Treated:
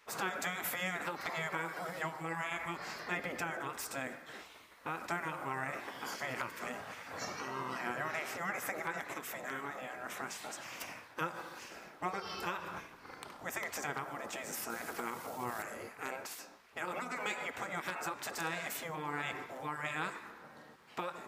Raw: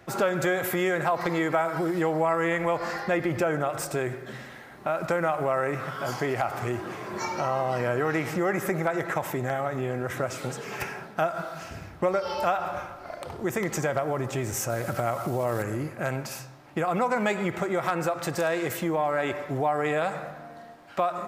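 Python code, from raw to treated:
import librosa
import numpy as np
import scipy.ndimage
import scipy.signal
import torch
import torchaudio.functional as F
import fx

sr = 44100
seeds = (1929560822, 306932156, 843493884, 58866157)

y = fx.spec_gate(x, sr, threshold_db=-10, keep='weak')
y = fx.low_shelf(y, sr, hz=76.0, db=-11.5)
y = F.gain(torch.from_numpy(y), -4.5).numpy()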